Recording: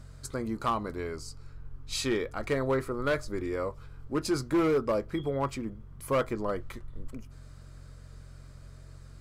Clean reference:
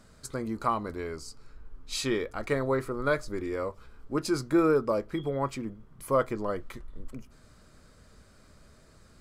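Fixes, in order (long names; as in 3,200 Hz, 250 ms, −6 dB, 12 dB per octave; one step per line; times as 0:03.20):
clipped peaks rebuilt −21 dBFS
hum removal 45 Hz, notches 3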